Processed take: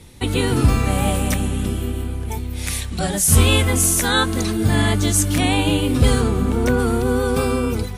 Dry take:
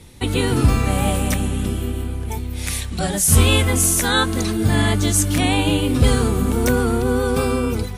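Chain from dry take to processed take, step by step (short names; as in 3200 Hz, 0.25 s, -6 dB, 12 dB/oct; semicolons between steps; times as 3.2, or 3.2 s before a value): 6.2–6.78 high shelf 9700 Hz -> 5200 Hz -12 dB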